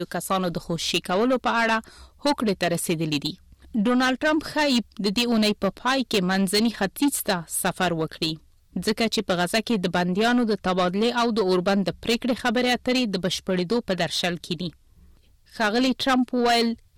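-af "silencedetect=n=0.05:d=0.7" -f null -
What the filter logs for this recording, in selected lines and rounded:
silence_start: 14.68
silence_end: 15.60 | silence_duration: 0.92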